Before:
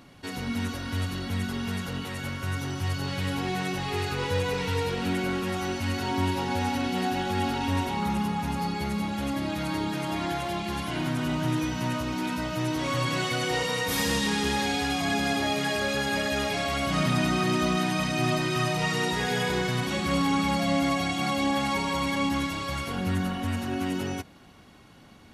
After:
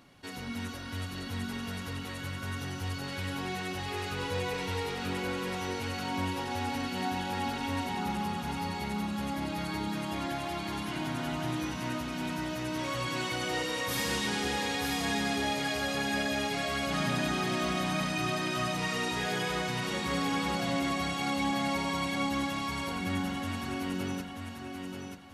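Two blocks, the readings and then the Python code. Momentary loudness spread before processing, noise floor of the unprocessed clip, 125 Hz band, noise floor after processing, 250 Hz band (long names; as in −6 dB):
6 LU, −51 dBFS, −7.0 dB, −40 dBFS, −5.5 dB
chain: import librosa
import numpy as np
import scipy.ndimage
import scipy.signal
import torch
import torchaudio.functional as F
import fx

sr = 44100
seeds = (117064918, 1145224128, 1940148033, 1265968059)

p1 = fx.low_shelf(x, sr, hz=390.0, db=-3.5)
p2 = p1 + fx.echo_feedback(p1, sr, ms=934, feedback_pct=30, wet_db=-5, dry=0)
y = p2 * librosa.db_to_amplitude(-5.0)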